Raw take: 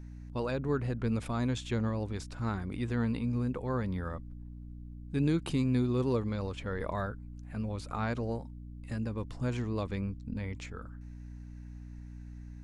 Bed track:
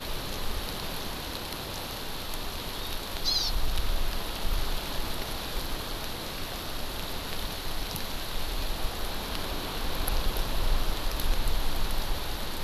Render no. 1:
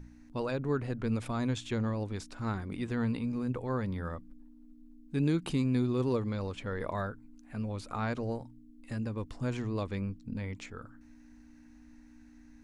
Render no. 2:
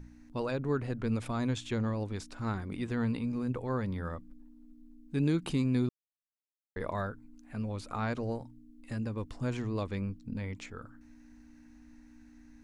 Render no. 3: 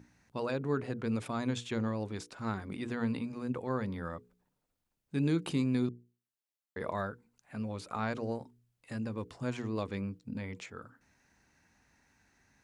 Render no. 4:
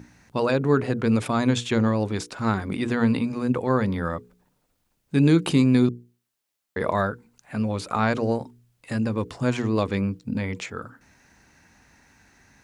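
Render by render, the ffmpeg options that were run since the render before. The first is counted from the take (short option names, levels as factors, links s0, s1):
-af "bandreject=f=60:t=h:w=4,bandreject=f=120:t=h:w=4,bandreject=f=180:t=h:w=4"
-filter_complex "[0:a]asplit=3[s0][s1][s2];[s0]atrim=end=5.89,asetpts=PTS-STARTPTS,afade=t=out:st=5.886:d=0.004:c=hsin[s3];[s1]atrim=start=5.89:end=6.76,asetpts=PTS-STARTPTS,volume=0[s4];[s2]atrim=start=6.76,asetpts=PTS-STARTPTS,afade=t=in:d=0.004:c=hsin[s5];[s3][s4][s5]concat=n=3:v=0:a=1"
-af "highpass=120,bandreject=f=60:t=h:w=6,bandreject=f=120:t=h:w=6,bandreject=f=180:t=h:w=6,bandreject=f=240:t=h:w=6,bandreject=f=300:t=h:w=6,bandreject=f=360:t=h:w=6,bandreject=f=420:t=h:w=6,bandreject=f=480:t=h:w=6"
-af "volume=3.98"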